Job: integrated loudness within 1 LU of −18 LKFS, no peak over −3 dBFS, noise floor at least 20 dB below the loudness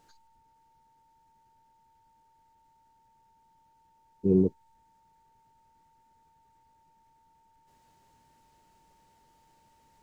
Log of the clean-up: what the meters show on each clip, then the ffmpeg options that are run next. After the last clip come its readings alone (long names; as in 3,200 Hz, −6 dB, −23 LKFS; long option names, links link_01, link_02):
interfering tone 900 Hz; level of the tone −63 dBFS; integrated loudness −26.5 LKFS; sample peak −12.0 dBFS; target loudness −18.0 LKFS
→ -af "bandreject=frequency=900:width=30"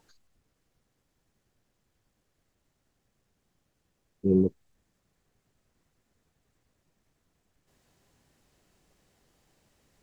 interfering tone none found; integrated loudness −26.5 LKFS; sample peak −12.0 dBFS; target loudness −18.0 LKFS
→ -af "volume=8.5dB"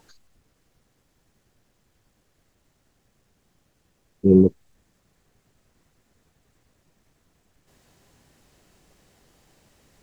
integrated loudness −18.0 LKFS; sample peak −3.5 dBFS; background noise floor −68 dBFS